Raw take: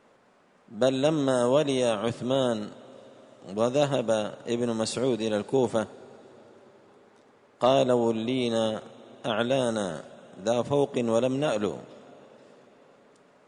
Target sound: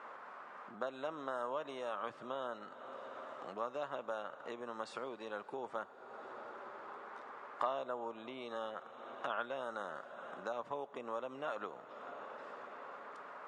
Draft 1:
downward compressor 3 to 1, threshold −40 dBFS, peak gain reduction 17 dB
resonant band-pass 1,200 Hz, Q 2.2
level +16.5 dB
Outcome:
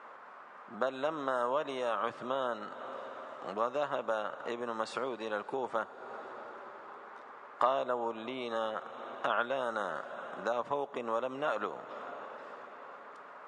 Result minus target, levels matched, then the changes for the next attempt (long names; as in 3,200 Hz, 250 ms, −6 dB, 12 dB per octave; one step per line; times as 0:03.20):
downward compressor: peak gain reduction −7.5 dB
change: downward compressor 3 to 1, threshold −51.5 dBFS, peak gain reduction 24.5 dB